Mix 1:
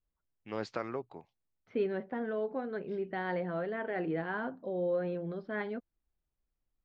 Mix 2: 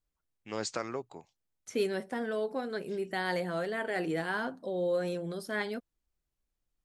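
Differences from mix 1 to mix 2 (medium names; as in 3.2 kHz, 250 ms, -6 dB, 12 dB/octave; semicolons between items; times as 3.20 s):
second voice: remove distance through air 280 m; master: remove distance through air 270 m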